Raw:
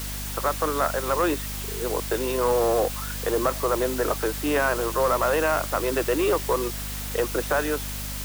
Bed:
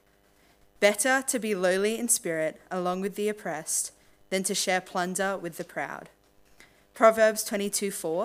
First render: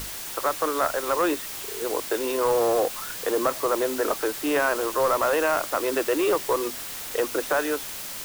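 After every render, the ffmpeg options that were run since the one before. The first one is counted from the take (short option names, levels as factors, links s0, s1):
-af "bandreject=f=50:t=h:w=6,bandreject=f=100:t=h:w=6,bandreject=f=150:t=h:w=6,bandreject=f=200:t=h:w=6,bandreject=f=250:t=h:w=6"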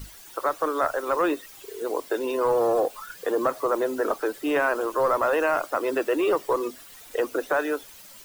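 -af "afftdn=nr=14:nf=-35"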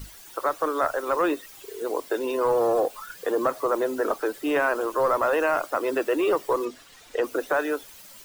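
-filter_complex "[0:a]asettb=1/sr,asplit=3[s0][s1][s2];[s0]atrim=end=6.654[s3];[s1]atrim=start=6.65:end=7.24,asetpts=PTS-STARTPTS,afade=t=in:d=0.004:c=qsin,afade=t=out:st=0.586:d=0.004:c=qsin,acrossover=split=7500[s4][s5];[s5]acompressor=threshold=0.00112:ratio=4:attack=1:release=60[s6];[s4][s6]amix=inputs=2:normalize=0[s7];[s2]atrim=start=7.236[s8];[s3][s7]acrossfade=d=0.004:c1=hsin:c2=qsin[s9];[s9][s8]acrossfade=d=0.004:c1=qsin:c2=hsin"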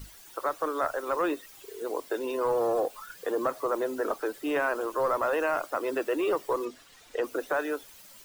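-af "volume=0.596"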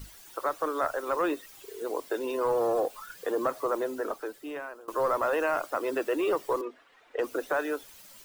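-filter_complex "[0:a]asettb=1/sr,asplit=3[s0][s1][s2];[s0]atrim=end=6.614[s3];[s1]atrim=start=6.61:end=7.19,asetpts=PTS-STARTPTS,afade=t=in:d=0.004:c=qsin,afade=t=out:st=0.576:d=0.004:c=qsin,acrossover=split=290 2700:gain=0.141 1 0.1[s4][s5][s6];[s4][s5][s6]amix=inputs=3:normalize=0[s7];[s2]atrim=start=7.186[s8];[s3][s7]acrossfade=d=0.004:c1=hsin:c2=qsin[s9];[s9][s8]acrossfade=d=0.004:c1=qsin:c2=hsin,asplit=2[s10][s11];[s10]atrim=end=4.88,asetpts=PTS-STARTPTS,afade=t=out:st=3.69:d=1.19:silence=0.0749894[s12];[s11]atrim=start=4.88,asetpts=PTS-STARTPTS,afade=t=in:d=0.004:c=hsin:silence=0.0749894[s13];[s12][s13]concat=n=2:v=0:a=1"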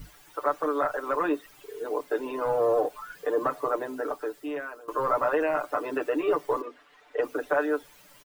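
-filter_complex "[0:a]acrossover=split=2700[s0][s1];[s1]acompressor=threshold=0.00158:ratio=4:attack=1:release=60[s2];[s0][s2]amix=inputs=2:normalize=0,aecho=1:1:6.8:0.86"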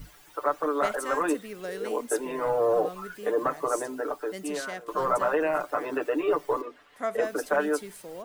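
-filter_complex "[1:a]volume=0.251[s0];[0:a][s0]amix=inputs=2:normalize=0"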